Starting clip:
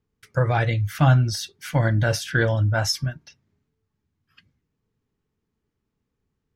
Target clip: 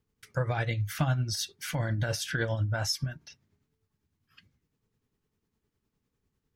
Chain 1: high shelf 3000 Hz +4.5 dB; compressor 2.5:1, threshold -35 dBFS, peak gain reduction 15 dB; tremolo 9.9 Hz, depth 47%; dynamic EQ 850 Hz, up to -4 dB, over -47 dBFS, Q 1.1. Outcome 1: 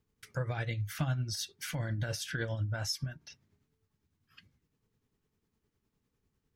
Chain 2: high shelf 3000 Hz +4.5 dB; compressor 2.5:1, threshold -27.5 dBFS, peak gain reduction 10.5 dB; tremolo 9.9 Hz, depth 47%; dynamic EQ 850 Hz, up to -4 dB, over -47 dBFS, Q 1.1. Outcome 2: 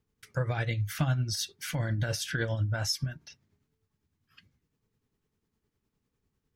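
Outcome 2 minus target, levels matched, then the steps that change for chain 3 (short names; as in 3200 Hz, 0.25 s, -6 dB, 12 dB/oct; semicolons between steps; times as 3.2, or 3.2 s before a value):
1000 Hz band -3.0 dB
remove: dynamic EQ 850 Hz, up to -4 dB, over -47 dBFS, Q 1.1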